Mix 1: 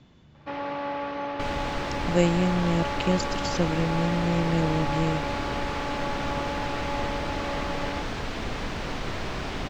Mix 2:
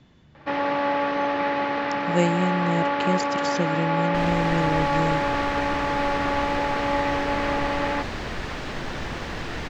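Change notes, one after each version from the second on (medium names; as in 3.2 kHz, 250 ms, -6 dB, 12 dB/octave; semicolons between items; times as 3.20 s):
first sound +7.5 dB; second sound: entry +2.75 s; master: add peaking EQ 1.8 kHz +4.5 dB 0.28 oct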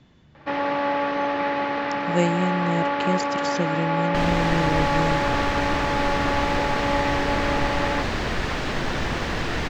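second sound +5.5 dB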